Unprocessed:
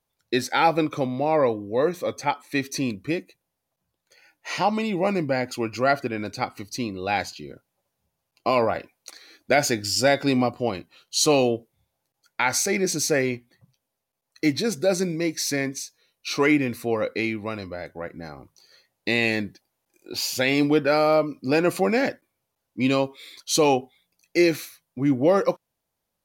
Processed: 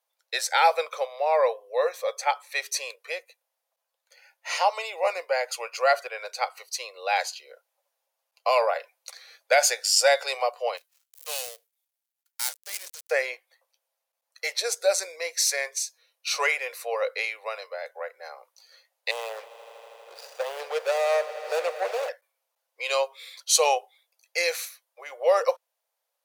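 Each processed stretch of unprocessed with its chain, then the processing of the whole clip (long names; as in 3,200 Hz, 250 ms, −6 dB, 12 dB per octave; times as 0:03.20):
0:10.77–0:13.11: gap after every zero crossing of 0.16 ms + first-order pre-emphasis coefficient 0.9 + de-essing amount 20%
0:19.11–0:22.09: running median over 41 samples + echo that builds up and dies away 80 ms, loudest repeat 5, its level −18 dB
whole clip: Butterworth high-pass 480 Hz 72 dB per octave; dynamic equaliser 8,400 Hz, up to +7 dB, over −44 dBFS, Q 0.96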